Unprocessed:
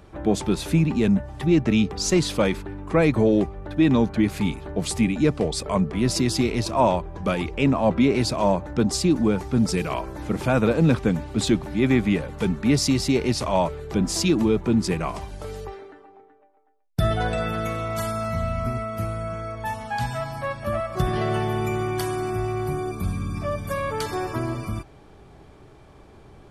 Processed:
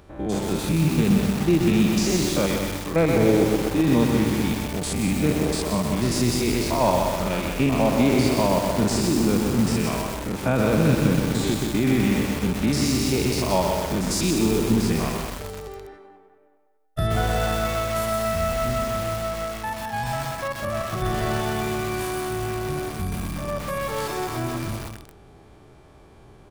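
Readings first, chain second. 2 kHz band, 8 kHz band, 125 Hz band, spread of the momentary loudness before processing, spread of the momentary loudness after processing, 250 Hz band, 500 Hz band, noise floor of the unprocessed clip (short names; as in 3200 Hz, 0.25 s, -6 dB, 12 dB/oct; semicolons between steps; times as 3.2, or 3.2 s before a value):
+1.5 dB, +2.5 dB, +0.5 dB, 9 LU, 9 LU, 0.0 dB, +0.5 dB, -49 dBFS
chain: stepped spectrum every 0.1 s; high shelf 11000 Hz +8.5 dB; vibrato 6.1 Hz 6.3 cents; echo 0.178 s -7.5 dB; lo-fi delay 0.126 s, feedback 80%, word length 5-bit, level -4 dB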